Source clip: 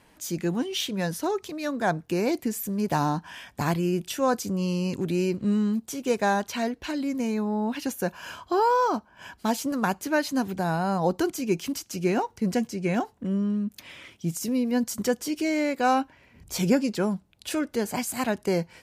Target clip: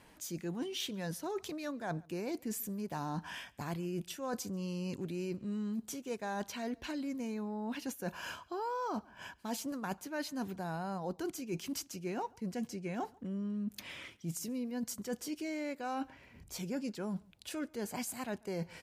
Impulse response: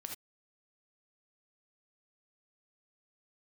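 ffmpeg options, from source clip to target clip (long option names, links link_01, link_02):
-filter_complex "[0:a]areverse,acompressor=threshold=-34dB:ratio=6,areverse,asplit=2[link_01][link_02];[link_02]adelay=139.9,volume=-26dB,highshelf=frequency=4000:gain=-3.15[link_03];[link_01][link_03]amix=inputs=2:normalize=0,volume=-2dB"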